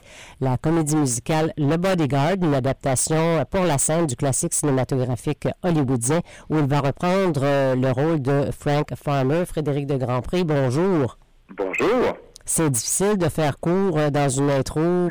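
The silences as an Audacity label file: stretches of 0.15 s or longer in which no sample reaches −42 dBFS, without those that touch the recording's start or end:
11.140000	11.490000	silence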